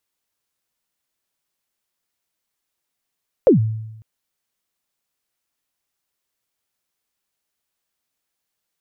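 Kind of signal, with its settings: kick drum length 0.55 s, from 590 Hz, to 110 Hz, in 0.122 s, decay 0.95 s, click off, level -6 dB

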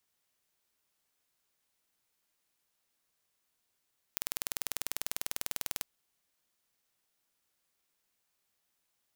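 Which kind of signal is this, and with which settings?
pulse train 20.1/s, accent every 0, -5 dBFS 1.67 s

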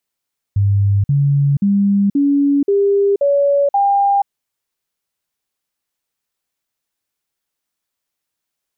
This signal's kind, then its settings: stepped sine 100 Hz up, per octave 2, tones 7, 0.48 s, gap 0.05 s -10.5 dBFS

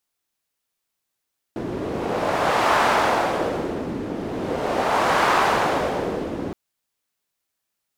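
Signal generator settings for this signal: wind-like swept noise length 4.97 s, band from 300 Hz, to 1000 Hz, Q 1.4, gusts 2, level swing 10.5 dB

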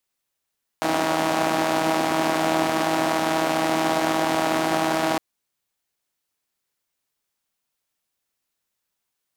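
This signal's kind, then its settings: four-cylinder engine model, steady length 4.36 s, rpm 4800, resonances 310/670 Hz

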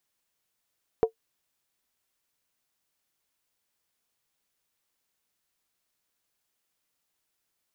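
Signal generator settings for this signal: skin hit, lowest mode 449 Hz, decay 0.10 s, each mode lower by 11 dB, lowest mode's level -12.5 dB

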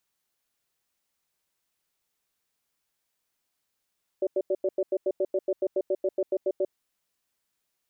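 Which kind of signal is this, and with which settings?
cadence 376 Hz, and 578 Hz, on 0.05 s, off 0.09 s, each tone -25 dBFS 2.45 s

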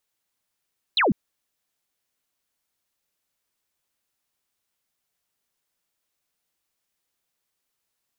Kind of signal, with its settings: laser zap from 4300 Hz, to 160 Hz, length 0.15 s sine, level -16.5 dB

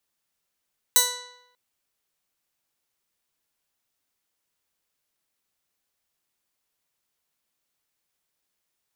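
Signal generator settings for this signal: plucked string B4, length 0.59 s, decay 0.88 s, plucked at 0.2, bright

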